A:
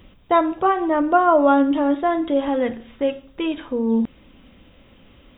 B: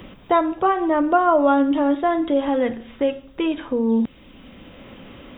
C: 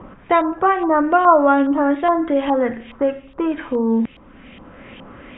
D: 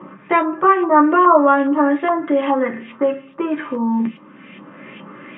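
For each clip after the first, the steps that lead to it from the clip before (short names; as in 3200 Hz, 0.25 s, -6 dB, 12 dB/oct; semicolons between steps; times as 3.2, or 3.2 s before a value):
three-band squash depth 40%
LFO low-pass saw up 2.4 Hz 990–3000 Hz; gain +1 dB
reverb RT60 0.15 s, pre-delay 3 ms, DRR 1.5 dB; gain -4.5 dB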